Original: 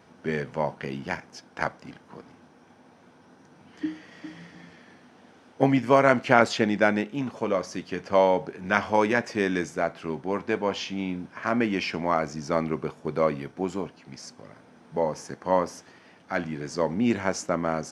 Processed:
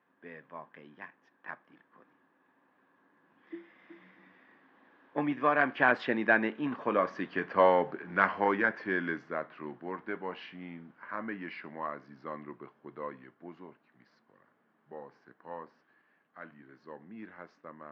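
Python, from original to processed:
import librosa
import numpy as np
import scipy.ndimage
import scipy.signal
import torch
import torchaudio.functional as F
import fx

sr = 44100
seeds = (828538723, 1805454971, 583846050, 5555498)

y = fx.diode_clip(x, sr, knee_db=-8.0)
y = fx.doppler_pass(y, sr, speed_mps=28, closest_m=28.0, pass_at_s=7.25)
y = fx.cabinet(y, sr, low_hz=170.0, low_slope=12, high_hz=3400.0, hz=(310.0, 1100.0, 1700.0), db=(3, 8, 10))
y = y * librosa.db_to_amplitude(-3.0)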